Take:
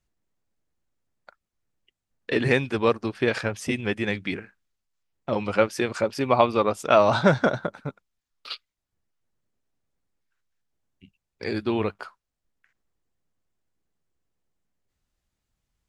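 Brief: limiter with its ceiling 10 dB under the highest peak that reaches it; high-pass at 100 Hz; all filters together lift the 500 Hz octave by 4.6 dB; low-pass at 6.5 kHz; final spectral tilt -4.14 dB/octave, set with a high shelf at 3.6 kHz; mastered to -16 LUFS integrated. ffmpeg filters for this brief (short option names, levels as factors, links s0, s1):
-af "highpass=100,lowpass=6500,equalizer=f=500:t=o:g=5.5,highshelf=f=3600:g=5.5,volume=2.66,alimiter=limit=0.794:level=0:latency=1"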